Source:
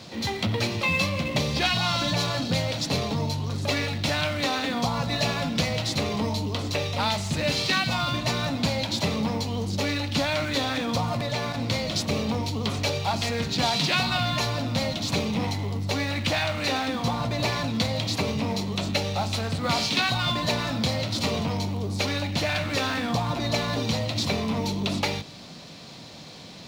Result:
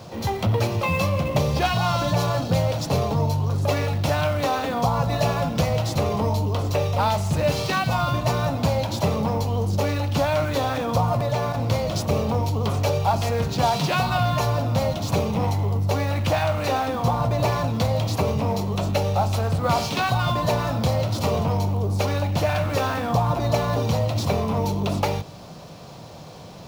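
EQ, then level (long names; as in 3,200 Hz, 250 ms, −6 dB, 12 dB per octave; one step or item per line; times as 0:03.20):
octave-band graphic EQ 250/2,000/4,000/8,000 Hz −10/−10/−12/−7 dB
+8.5 dB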